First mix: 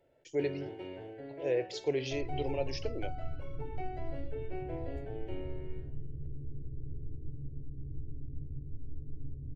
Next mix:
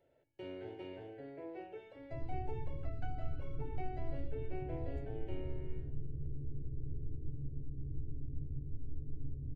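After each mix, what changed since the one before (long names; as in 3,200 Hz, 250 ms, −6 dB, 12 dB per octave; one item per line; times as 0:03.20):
speech: muted
first sound −3.5 dB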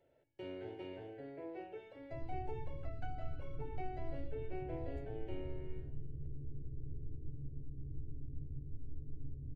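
second sound −3.5 dB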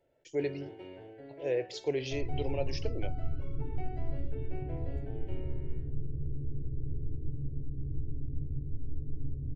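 speech: unmuted
second sound +9.0 dB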